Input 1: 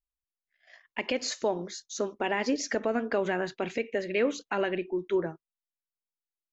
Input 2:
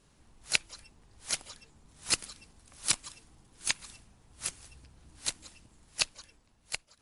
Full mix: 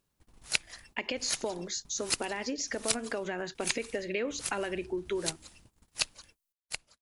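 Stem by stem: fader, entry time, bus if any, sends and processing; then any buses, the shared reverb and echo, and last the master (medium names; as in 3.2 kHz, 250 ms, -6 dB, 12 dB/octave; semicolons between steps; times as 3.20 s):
+1.0 dB, 0.00 s, no send, treble shelf 5.2 kHz +11.5 dB; compression 5:1, threshold -32 dBFS, peak gain reduction 10 dB
-1.5 dB, 0.00 s, no send, gate -56 dBFS, range -59 dB; upward compressor, threshold -45 dBFS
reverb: none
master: gain riding 2 s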